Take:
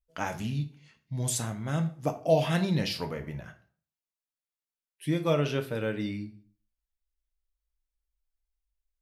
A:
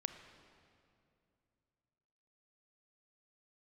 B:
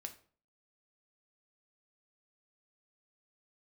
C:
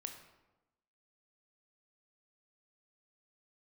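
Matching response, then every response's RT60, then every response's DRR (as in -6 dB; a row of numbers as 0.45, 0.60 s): B; 2.6, 0.45, 1.0 s; 8.0, 5.0, 4.5 dB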